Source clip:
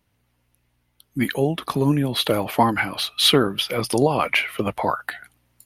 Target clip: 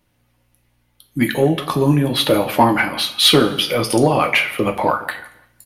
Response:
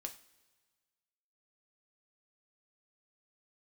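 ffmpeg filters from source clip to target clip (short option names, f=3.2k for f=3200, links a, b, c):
-filter_complex "[0:a]asplit=2[a][b];[b]adelay=169,lowpass=f=2k:p=1,volume=-18.5dB,asplit=2[c][d];[d]adelay=169,lowpass=f=2k:p=1,volume=0.3,asplit=2[e][f];[f]adelay=169,lowpass=f=2k:p=1,volume=0.3[g];[a][c][e][g]amix=inputs=4:normalize=0[h];[1:a]atrim=start_sample=2205,afade=t=out:st=0.41:d=0.01,atrim=end_sample=18522[i];[h][i]afir=irnorm=-1:irlink=0,acontrast=54,volume=2dB"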